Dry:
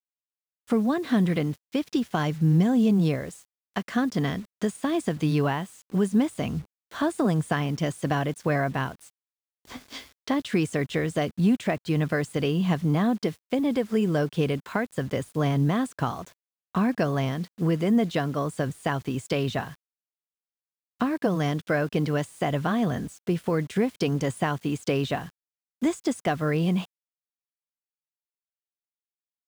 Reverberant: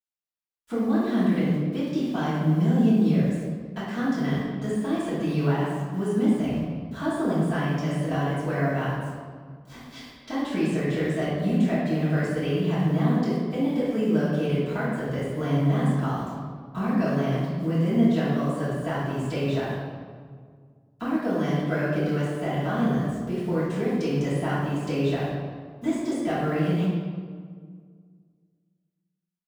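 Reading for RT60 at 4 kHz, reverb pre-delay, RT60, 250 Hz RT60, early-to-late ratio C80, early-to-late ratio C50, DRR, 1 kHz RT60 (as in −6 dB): 1.1 s, 3 ms, 1.8 s, 2.4 s, 1.0 dB, −1.5 dB, −11.0 dB, 1.7 s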